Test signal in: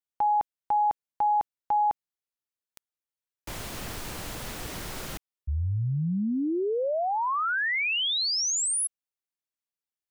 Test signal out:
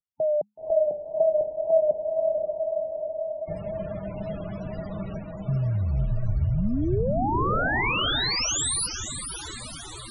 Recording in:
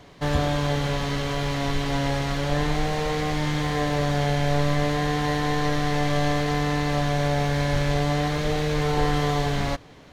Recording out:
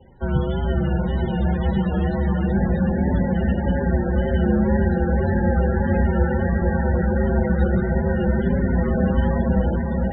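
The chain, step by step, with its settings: low shelf 190 Hz +3 dB; wow and flutter 1.7 Hz 57 cents; diffused feedback echo 0.507 s, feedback 71%, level -3 dB; frequency shift -210 Hz; loudest bins only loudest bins 32

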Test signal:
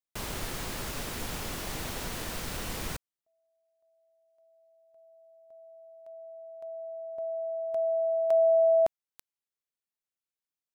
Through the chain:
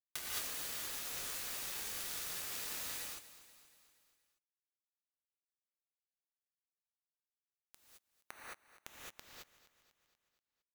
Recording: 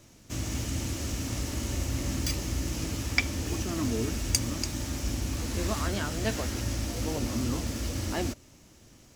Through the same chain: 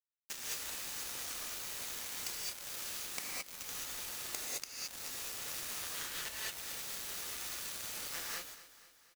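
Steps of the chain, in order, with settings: HPF 1400 Hz 24 dB/oct; compressor 16:1, threshold -46 dBFS; wrapped overs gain 29.5 dB; bit-crush 7-bit; feedback echo 0.239 s, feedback 56%, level -15.5 dB; non-linear reverb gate 0.24 s rising, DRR -5.5 dB; gain +5.5 dB

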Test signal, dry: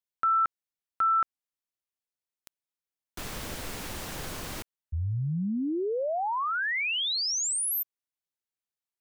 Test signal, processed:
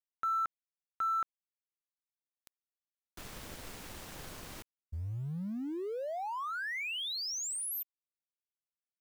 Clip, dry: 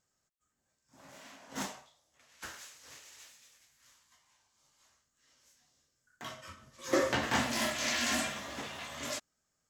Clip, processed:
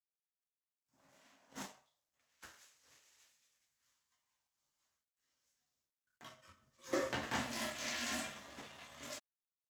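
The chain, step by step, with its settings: G.711 law mismatch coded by A; gain -7 dB

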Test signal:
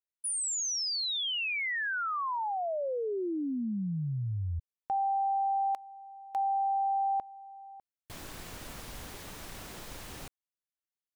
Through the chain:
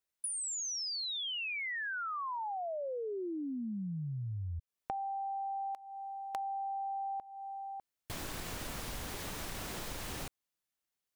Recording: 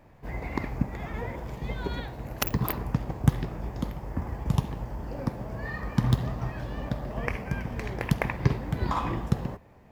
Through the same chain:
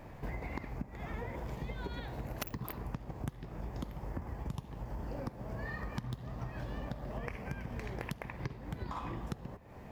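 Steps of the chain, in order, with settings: compressor 12:1, threshold -42 dBFS; gain +5.5 dB

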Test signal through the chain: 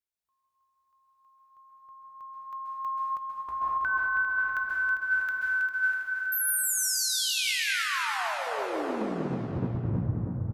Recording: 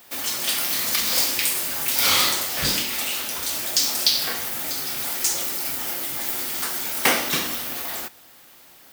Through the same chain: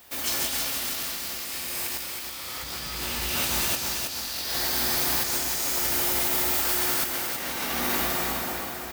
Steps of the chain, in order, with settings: bell 63 Hz +12 dB 0.74 oct; resonator 60 Hz, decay 0.64 s, harmonics all, mix 60%; plate-style reverb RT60 3.2 s, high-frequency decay 0.55×, pre-delay 0.12 s, DRR -4 dB; negative-ratio compressor -29 dBFS, ratio -0.5; feedback echo 0.323 s, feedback 52%, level -5.5 dB

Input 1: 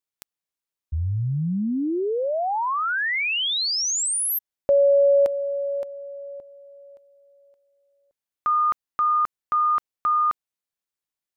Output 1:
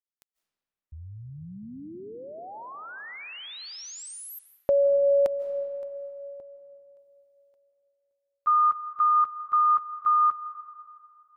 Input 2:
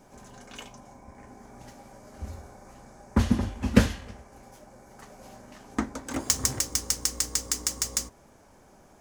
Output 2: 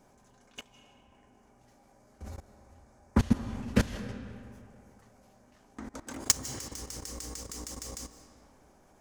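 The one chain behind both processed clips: level quantiser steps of 21 dB; digital reverb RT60 2.5 s, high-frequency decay 0.6×, pre-delay 0.12 s, DRR 11 dB; gain +1 dB

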